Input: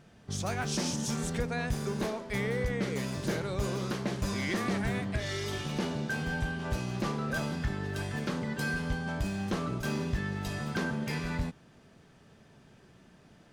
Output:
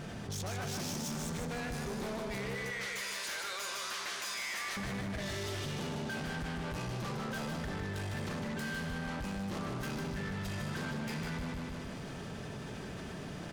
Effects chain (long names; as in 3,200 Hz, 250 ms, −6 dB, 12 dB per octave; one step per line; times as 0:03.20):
0:02.55–0:04.77: high-pass filter 1,400 Hz 12 dB per octave
soft clipping −39 dBFS, distortion −6 dB
repeating echo 153 ms, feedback 45%, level −5 dB
envelope flattener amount 70%